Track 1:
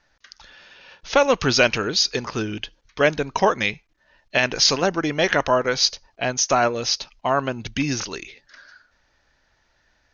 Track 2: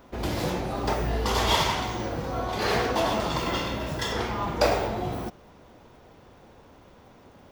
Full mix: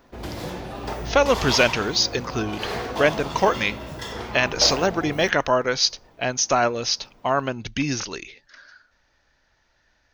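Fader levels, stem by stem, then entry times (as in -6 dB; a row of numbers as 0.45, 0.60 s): -1.0, -4.0 dB; 0.00, 0.00 s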